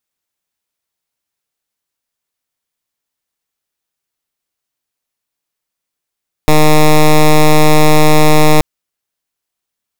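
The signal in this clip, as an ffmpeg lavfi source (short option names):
-f lavfi -i "aevalsrc='0.531*(2*lt(mod(153*t,1),0.1)-1)':d=2.13:s=44100"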